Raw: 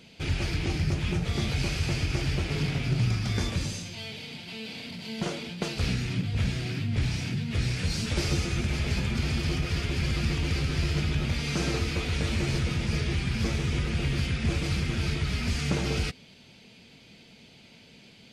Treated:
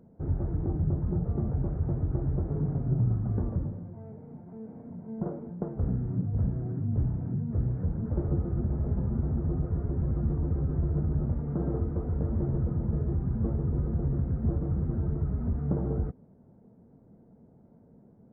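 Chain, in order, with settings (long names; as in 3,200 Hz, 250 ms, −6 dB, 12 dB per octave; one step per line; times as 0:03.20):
Gaussian smoothing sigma 9.7 samples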